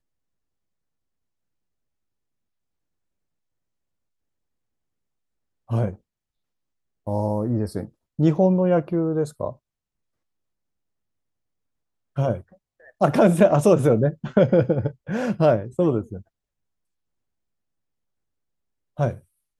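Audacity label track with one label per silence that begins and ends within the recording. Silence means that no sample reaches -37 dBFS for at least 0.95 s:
5.950000	7.070000	silence
9.530000	12.170000	silence
16.210000	18.990000	silence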